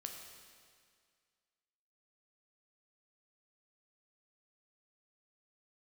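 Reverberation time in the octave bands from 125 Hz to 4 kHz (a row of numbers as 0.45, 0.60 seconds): 2.0, 2.0, 2.0, 2.0, 2.0, 1.9 seconds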